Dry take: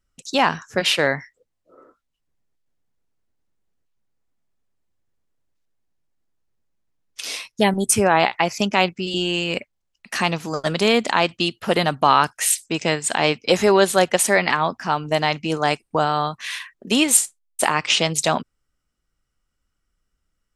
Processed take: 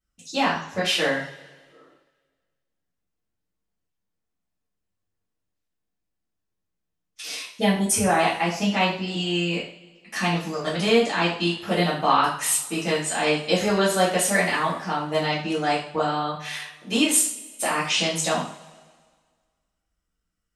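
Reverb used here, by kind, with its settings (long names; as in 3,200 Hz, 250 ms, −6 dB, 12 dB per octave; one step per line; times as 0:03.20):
coupled-rooms reverb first 0.44 s, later 1.7 s, from −20 dB, DRR −9 dB
level −13 dB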